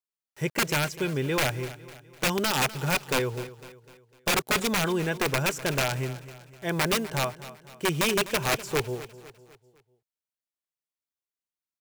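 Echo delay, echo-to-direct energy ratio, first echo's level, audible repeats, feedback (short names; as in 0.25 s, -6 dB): 0.251 s, -15.0 dB, -16.0 dB, 3, 46%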